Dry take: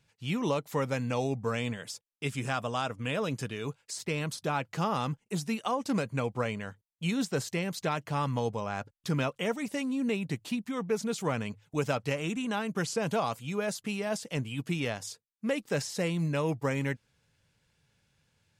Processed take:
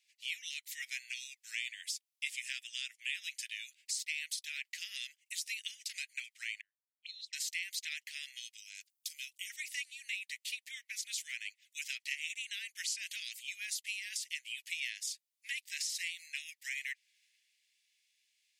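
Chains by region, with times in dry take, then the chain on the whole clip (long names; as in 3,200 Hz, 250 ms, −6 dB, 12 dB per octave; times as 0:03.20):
0:06.61–0:07.33: low-shelf EQ 340 Hz +10.5 dB + envelope filter 270–4,100 Hz, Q 17, up, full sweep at −20.5 dBFS
0:08.57–0:09.50: first difference + notch filter 1,800 Hz, Q 14
whole clip: Butterworth high-pass 1,900 Hz 72 dB per octave; downward compressor 2 to 1, threshold −56 dBFS; multiband upward and downward expander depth 40%; level +11 dB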